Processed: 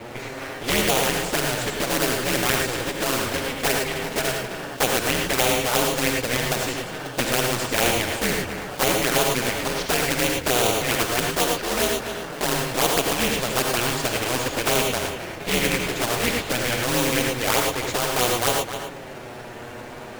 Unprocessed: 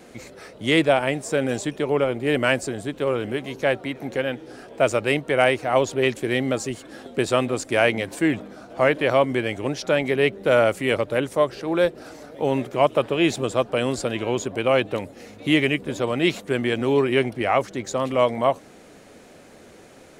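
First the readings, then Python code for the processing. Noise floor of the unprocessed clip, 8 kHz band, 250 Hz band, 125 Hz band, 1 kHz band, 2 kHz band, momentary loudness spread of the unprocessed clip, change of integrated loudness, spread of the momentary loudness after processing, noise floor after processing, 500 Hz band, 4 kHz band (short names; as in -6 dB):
-48 dBFS, +13.0 dB, -3.0 dB, 0.0 dB, +1.0 dB, +1.5 dB, 10 LU, +0.5 dB, 10 LU, -37 dBFS, -4.0 dB, +6.5 dB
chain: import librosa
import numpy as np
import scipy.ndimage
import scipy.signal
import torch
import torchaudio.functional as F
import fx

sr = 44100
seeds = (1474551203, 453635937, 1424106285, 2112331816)

p1 = scipy.signal.sosfilt(scipy.signal.butter(2, 110.0, 'highpass', fs=sr, output='sos'), x)
p2 = fx.bass_treble(p1, sr, bass_db=-8, treble_db=-14)
p3 = p2 * np.sin(2.0 * np.pi * 120.0 * np.arange(len(p2)) / sr)
p4 = fx.sample_hold(p3, sr, seeds[0], rate_hz=2200.0, jitter_pct=20)
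p5 = p3 + (p4 * 10.0 ** (-4.0 / 20.0))
p6 = fx.env_flanger(p5, sr, rest_ms=9.2, full_db=-15.0)
p7 = p6 + 10.0 ** (-17.0 / 20.0) * np.pad(p6, (int(261 * sr / 1000.0), 0))[:len(p6)]
p8 = fx.rev_gated(p7, sr, seeds[1], gate_ms=130, shape='rising', drr_db=2.5)
p9 = fx.spectral_comp(p8, sr, ratio=2.0)
y = p9 * 10.0 ** (3.0 / 20.0)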